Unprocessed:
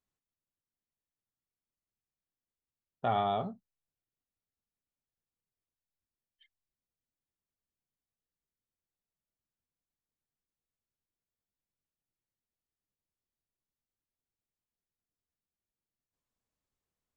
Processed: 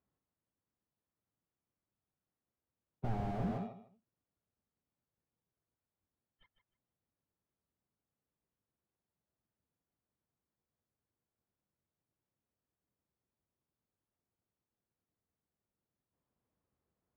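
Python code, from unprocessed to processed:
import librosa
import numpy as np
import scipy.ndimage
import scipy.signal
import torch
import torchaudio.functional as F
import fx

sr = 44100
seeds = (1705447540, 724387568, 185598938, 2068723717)

p1 = scipy.signal.sosfilt(scipy.signal.butter(2, 69.0, 'highpass', fs=sr, output='sos'), x)
p2 = fx.high_shelf(p1, sr, hz=3400.0, db=-11.0)
p3 = fx.sample_hold(p2, sr, seeds[0], rate_hz=3100.0, jitter_pct=0)
p4 = p2 + F.gain(torch.from_numpy(p3), -5.0).numpy()
p5 = fx.air_absorb(p4, sr, metres=370.0)
p6 = p5 + fx.echo_feedback(p5, sr, ms=154, feedback_pct=19, wet_db=-9, dry=0)
p7 = fx.slew_limit(p6, sr, full_power_hz=3.9)
y = F.gain(torch.from_numpy(p7), 4.0).numpy()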